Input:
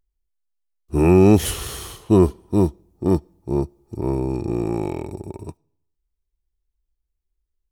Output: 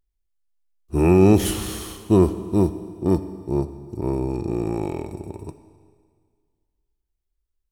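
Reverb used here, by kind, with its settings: Schroeder reverb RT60 1.9 s, combs from 28 ms, DRR 11.5 dB; trim -1.5 dB

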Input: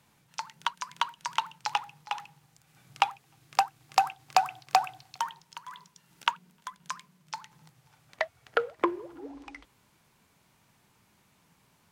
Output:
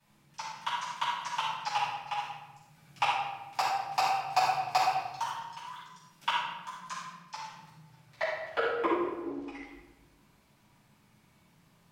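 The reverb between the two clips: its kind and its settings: simulated room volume 560 m³, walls mixed, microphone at 8.7 m; trim -15.5 dB

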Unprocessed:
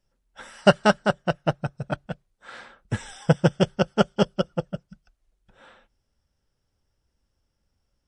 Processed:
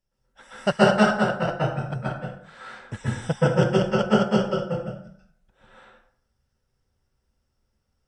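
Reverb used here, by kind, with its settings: plate-style reverb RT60 0.61 s, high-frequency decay 0.65×, pre-delay 115 ms, DRR -8.5 dB; trim -7.5 dB

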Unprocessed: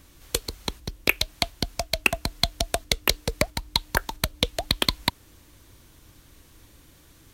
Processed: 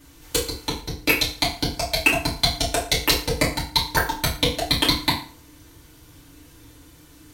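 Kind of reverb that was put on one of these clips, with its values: FDN reverb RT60 0.44 s, low-frequency decay 0.95×, high-frequency decay 0.85×, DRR -8 dB; trim -4 dB

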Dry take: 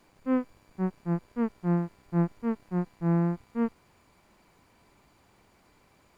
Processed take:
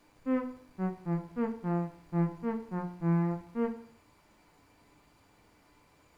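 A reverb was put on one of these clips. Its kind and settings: FDN reverb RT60 0.55 s, low-frequency decay 1×, high-frequency decay 0.95×, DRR 4.5 dB; trim -2.5 dB

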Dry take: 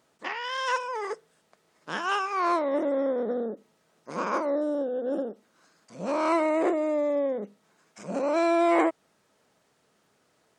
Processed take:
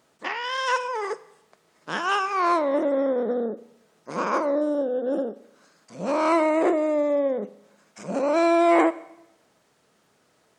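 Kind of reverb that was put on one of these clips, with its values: Schroeder reverb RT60 0.86 s, combs from 30 ms, DRR 16.5 dB; trim +3.5 dB

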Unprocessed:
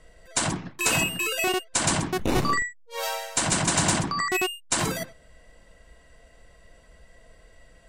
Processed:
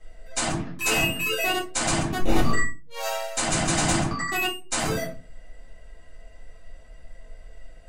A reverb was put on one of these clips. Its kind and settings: simulated room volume 120 m³, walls furnished, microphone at 3.9 m; trim -9 dB

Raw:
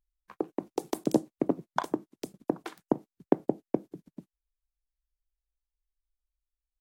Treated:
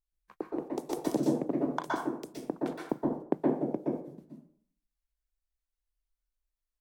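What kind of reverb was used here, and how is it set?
plate-style reverb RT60 0.56 s, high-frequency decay 0.6×, pre-delay 110 ms, DRR -4 dB; trim -6 dB

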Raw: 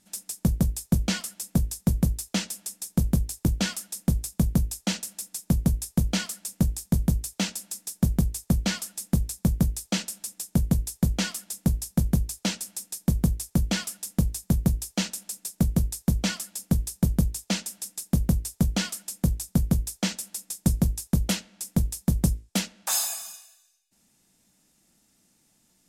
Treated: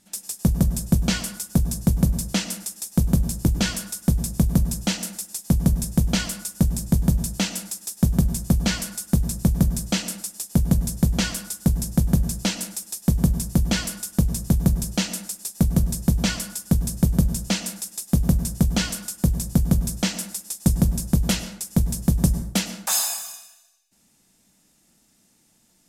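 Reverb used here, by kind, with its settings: plate-style reverb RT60 0.67 s, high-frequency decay 0.6×, pre-delay 90 ms, DRR 10.5 dB; trim +3.5 dB

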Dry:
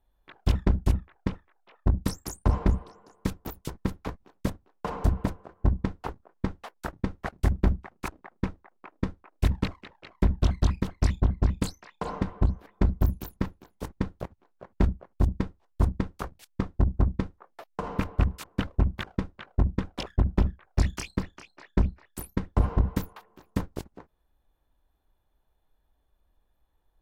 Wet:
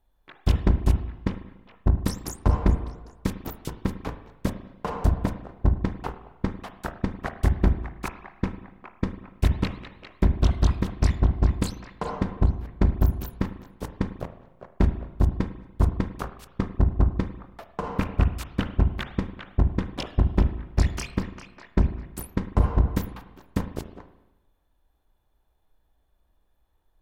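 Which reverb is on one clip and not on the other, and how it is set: spring tank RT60 1 s, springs 36/49 ms, chirp 80 ms, DRR 9.5 dB; trim +2 dB

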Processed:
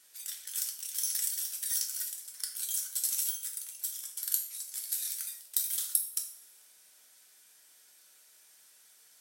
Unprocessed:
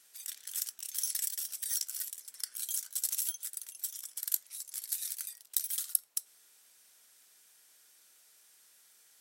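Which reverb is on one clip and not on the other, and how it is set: two-slope reverb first 0.45 s, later 1.6 s, DRR 1.5 dB

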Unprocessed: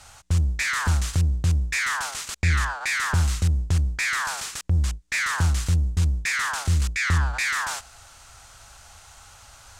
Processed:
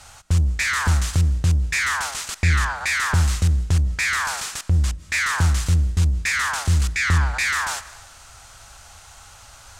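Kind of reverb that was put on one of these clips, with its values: algorithmic reverb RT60 0.91 s, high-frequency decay 0.95×, pre-delay 120 ms, DRR 18 dB; trim +3 dB

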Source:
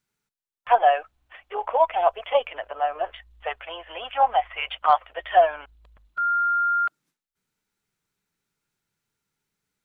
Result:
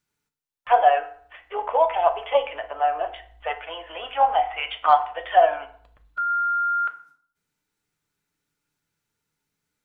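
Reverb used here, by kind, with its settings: FDN reverb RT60 0.55 s, low-frequency decay 1.1×, high-frequency decay 0.7×, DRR 6 dB

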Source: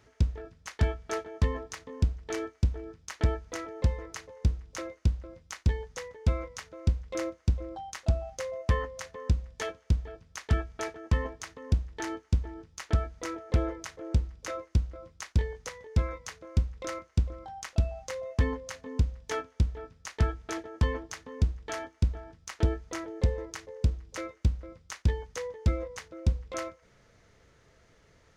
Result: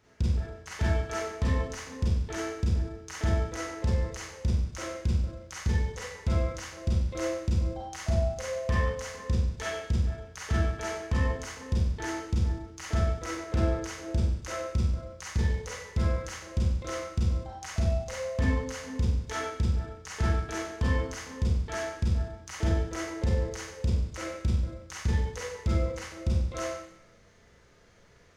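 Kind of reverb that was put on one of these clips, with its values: Schroeder reverb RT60 0.72 s, combs from 31 ms, DRR -6.5 dB; trim -4.5 dB

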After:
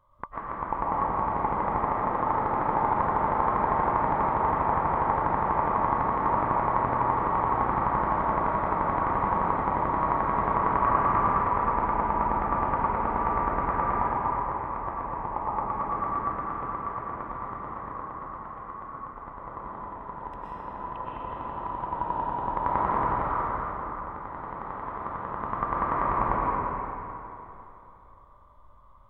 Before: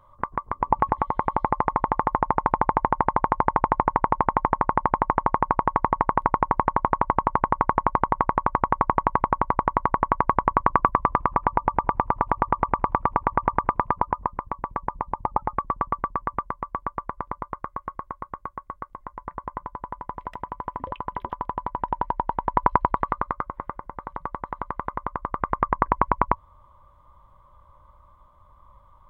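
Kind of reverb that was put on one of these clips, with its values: algorithmic reverb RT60 3.2 s, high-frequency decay 0.75×, pre-delay 80 ms, DRR -7.5 dB; trim -10 dB

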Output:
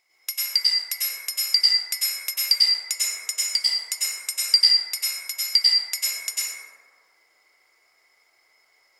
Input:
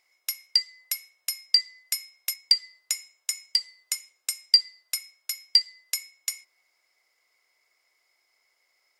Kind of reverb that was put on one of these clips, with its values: plate-style reverb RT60 1.9 s, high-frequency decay 0.3×, pre-delay 85 ms, DRR -9 dB

